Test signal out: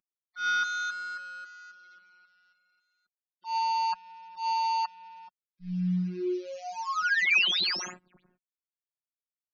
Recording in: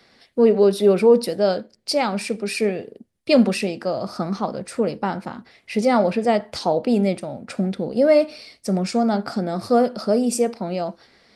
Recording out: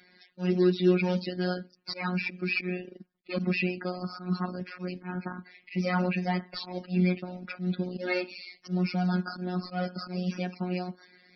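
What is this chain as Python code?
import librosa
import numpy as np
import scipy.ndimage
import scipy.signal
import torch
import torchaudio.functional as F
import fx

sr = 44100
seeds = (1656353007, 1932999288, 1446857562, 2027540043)

y = fx.cvsd(x, sr, bps=32000)
y = scipy.signal.sosfilt(scipy.signal.butter(4, 79.0, 'highpass', fs=sr, output='sos'), y)
y = fx.dynamic_eq(y, sr, hz=650.0, q=0.8, threshold_db=-31.0, ratio=4.0, max_db=-6)
y = fx.spec_topn(y, sr, count=64)
y = fx.auto_swell(y, sr, attack_ms=122.0)
y = fx.robotise(y, sr, hz=181.0)
y = fx.graphic_eq_31(y, sr, hz=(160, 250, 500, 800, 1600, 2500), db=(-4, 5, -10, -7, 3, 6))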